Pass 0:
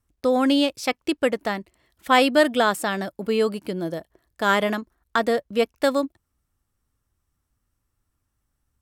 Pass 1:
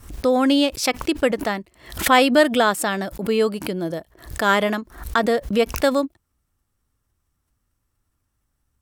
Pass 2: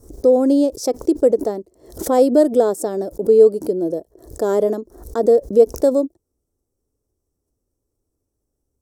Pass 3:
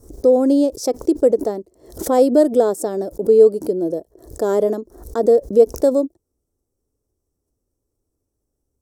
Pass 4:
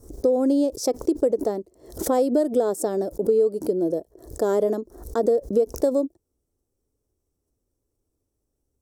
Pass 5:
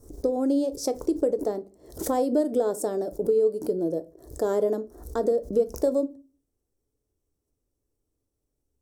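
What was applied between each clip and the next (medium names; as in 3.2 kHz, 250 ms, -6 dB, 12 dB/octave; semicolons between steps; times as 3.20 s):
swell ahead of each attack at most 120 dB/s; trim +2 dB
FFT filter 190 Hz 0 dB, 430 Hz +15 dB, 1.1 kHz -8 dB, 2.7 kHz -23 dB, 5.8 kHz +2 dB, 15 kHz -1 dB; trim -4.5 dB
no audible change
compression 6:1, threshold -15 dBFS, peak gain reduction 9.5 dB; trim -1.5 dB
simulated room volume 160 m³, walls furnished, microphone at 0.39 m; trim -3.5 dB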